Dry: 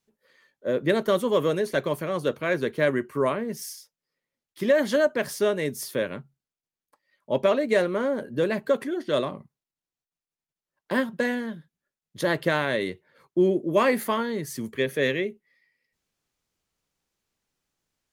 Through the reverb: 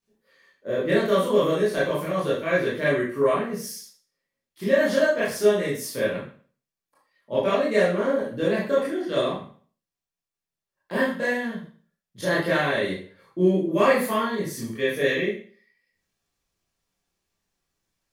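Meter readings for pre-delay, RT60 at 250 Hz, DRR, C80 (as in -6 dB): 20 ms, 0.45 s, -9.0 dB, 8.5 dB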